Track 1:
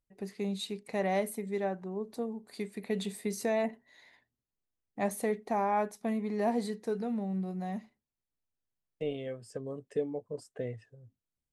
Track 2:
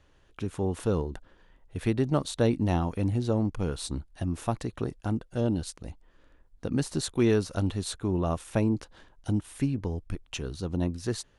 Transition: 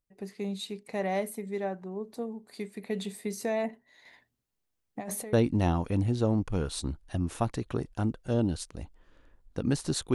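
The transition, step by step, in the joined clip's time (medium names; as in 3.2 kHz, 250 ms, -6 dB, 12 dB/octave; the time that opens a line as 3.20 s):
track 1
4.05–5.33 s: compressor with a negative ratio -37 dBFS, ratio -1
5.33 s: go over to track 2 from 2.40 s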